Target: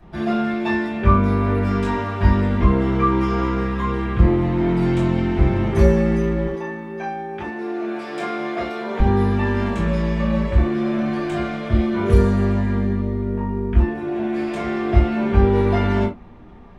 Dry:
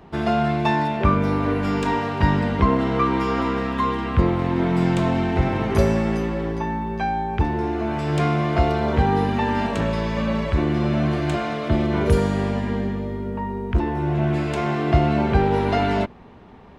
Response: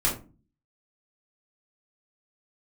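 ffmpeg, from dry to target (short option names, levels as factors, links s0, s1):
-filter_complex "[0:a]asettb=1/sr,asplit=3[s0][s1][s2];[s0]atrim=end=6.474[s3];[s1]atrim=start=6.47:end=9,asetpts=PTS-STARTPTS,afade=t=in:d=0.004:c=qsin,afade=t=out:st=2.526:d=0.004:c=qsin,highpass=320[s4];[s2]atrim=start=8.996[s5];[s3][s4]acrossfade=d=0.004:c1=hsin:c2=qsin[s6];[s6][s5]acrossfade=d=0.004:c1=qsin:c2=hsin[s7];[1:a]atrim=start_sample=2205,afade=t=out:st=0.14:d=0.01,atrim=end_sample=6615[s8];[s7][s8]afir=irnorm=-1:irlink=0,volume=0.251"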